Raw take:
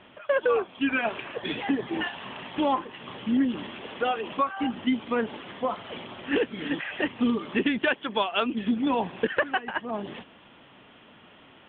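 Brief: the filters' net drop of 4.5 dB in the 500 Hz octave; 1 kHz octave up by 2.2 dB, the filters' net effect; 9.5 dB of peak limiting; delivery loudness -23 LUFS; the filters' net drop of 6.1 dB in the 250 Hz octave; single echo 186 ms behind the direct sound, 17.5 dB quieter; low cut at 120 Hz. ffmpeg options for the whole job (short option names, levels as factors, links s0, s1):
-af "highpass=120,equalizer=f=250:t=o:g=-5.5,equalizer=f=500:t=o:g=-5,equalizer=f=1000:t=o:g=4.5,alimiter=limit=0.1:level=0:latency=1,aecho=1:1:186:0.133,volume=2.82"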